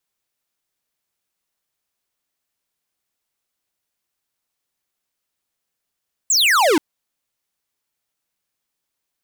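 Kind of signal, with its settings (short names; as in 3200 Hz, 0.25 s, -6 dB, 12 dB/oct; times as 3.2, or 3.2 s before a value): laser zap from 8100 Hz, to 280 Hz, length 0.48 s square, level -14.5 dB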